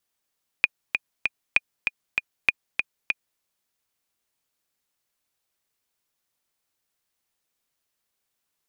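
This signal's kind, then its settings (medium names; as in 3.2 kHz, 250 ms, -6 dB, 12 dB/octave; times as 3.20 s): metronome 195 bpm, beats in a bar 3, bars 3, 2.45 kHz, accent 5.5 dB -3.5 dBFS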